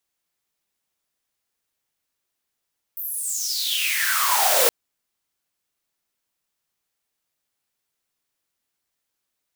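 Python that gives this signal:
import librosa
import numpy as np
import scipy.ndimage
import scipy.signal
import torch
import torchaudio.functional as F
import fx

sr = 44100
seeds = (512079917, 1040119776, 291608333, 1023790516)

y = fx.riser_noise(sr, seeds[0], length_s=1.72, colour='white', kind='highpass', start_hz=15000.0, end_hz=460.0, q=8.4, swell_db=19, law='exponential')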